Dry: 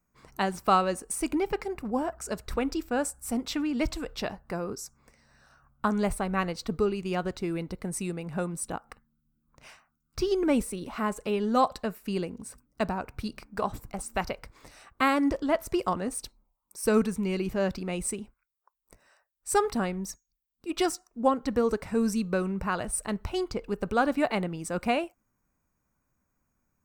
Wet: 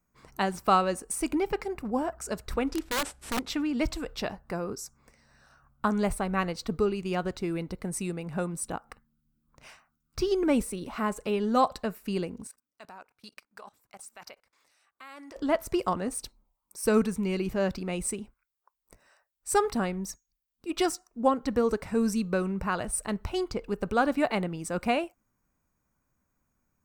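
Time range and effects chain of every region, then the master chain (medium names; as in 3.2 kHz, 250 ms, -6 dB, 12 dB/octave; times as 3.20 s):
2.67–3.50 s: CVSD coder 64 kbps + treble shelf 5.8 kHz -10.5 dB + integer overflow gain 23 dB
12.47–15.36 s: high-pass 1.2 kHz 6 dB/octave + level held to a coarse grid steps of 23 dB
whole clip: none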